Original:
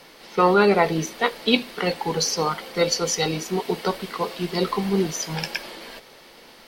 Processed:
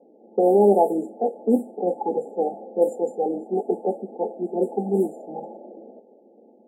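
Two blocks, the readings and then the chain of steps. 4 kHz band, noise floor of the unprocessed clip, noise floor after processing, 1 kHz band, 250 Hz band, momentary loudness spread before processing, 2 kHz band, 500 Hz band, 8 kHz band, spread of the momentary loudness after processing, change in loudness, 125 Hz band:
under -40 dB, -48 dBFS, -54 dBFS, -2.5 dB, 0.0 dB, 12 LU, under -40 dB, +2.5 dB, under -20 dB, 13 LU, -0.5 dB, -7.5 dB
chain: FFT band-reject 880–7100 Hz; level-controlled noise filter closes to 450 Hz, open at -16 dBFS; elliptic high-pass 210 Hz, stop band 40 dB; trim +2.5 dB

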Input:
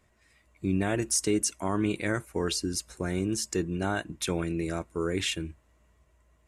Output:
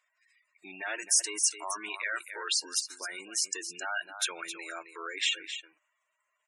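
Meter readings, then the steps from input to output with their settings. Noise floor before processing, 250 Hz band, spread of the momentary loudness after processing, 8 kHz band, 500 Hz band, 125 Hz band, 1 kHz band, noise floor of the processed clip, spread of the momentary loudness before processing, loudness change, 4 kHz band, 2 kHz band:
-66 dBFS, -22.0 dB, 14 LU, +3.0 dB, -14.0 dB, under -35 dB, -3.0 dB, -80 dBFS, 7 LU, -1.5 dB, +3.0 dB, +2.0 dB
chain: on a send: delay 265 ms -10.5 dB; on the sum: waveshaping leveller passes 1; high-pass 1.2 kHz 12 dB/octave; spectral gate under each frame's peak -15 dB strong

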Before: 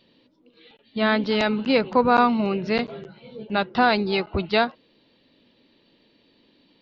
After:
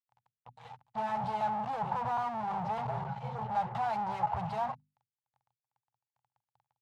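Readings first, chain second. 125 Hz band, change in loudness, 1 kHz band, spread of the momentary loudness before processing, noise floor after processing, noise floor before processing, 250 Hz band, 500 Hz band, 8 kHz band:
-6.0 dB, -12.5 dB, -6.5 dB, 15 LU, under -85 dBFS, -62 dBFS, -20.0 dB, -17.5 dB, no reading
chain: fuzz box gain 46 dB, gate -51 dBFS; two resonant band-passes 320 Hz, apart 2.8 oct; hum notches 50/100/150/200/250 Hz; trim -5.5 dB

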